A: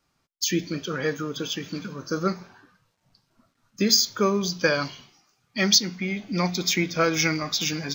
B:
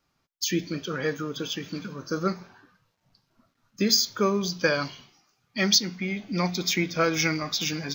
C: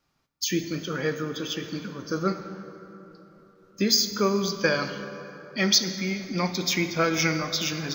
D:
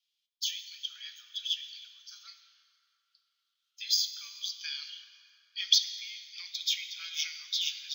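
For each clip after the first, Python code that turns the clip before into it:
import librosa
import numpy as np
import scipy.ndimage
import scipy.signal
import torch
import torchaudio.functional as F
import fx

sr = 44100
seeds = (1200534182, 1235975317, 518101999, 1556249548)

y1 = fx.peak_eq(x, sr, hz=8600.0, db=-7.0, octaves=0.46)
y1 = F.gain(torch.from_numpy(y1), -1.5).numpy()
y2 = fx.rev_plate(y1, sr, seeds[0], rt60_s=3.8, hf_ratio=0.5, predelay_ms=0, drr_db=8.5)
y3 = fx.ladder_highpass(y2, sr, hz=3000.0, resonance_pct=70)
y3 = F.gain(torch.from_numpy(y3), 2.0).numpy()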